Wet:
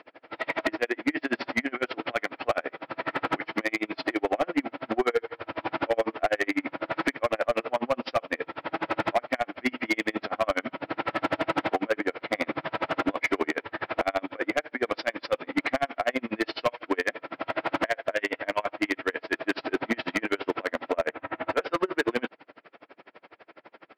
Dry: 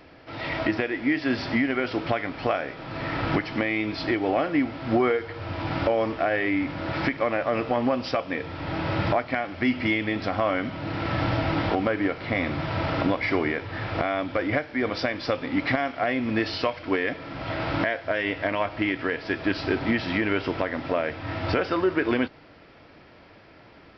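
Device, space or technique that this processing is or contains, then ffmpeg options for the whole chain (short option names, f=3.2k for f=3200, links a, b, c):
helicopter radio: -filter_complex "[0:a]asettb=1/sr,asplit=3[a][b][c];[a]atrim=end=20.944[d];[b]atrim=start=20.94:end=21.6,asetpts=PTS-STARTPTS,afade=t=in:d=0.004:c=qsin,afade=t=out:st=0.656:d=0.004:c=qsin,lowpass=2.5k[e];[c]atrim=start=21.596[f];[d][e]acrossfade=d=0.004:c1=hsin:c2=qsin[g];[g][f]acrossfade=d=0.004:c1=qsin:c2=hsin,highpass=350,lowpass=2.9k,aeval=exprs='val(0)*pow(10,-35*(0.5-0.5*cos(2*PI*12*n/s))/20)':c=same,asoftclip=type=hard:threshold=-25dB,volume=7.5dB"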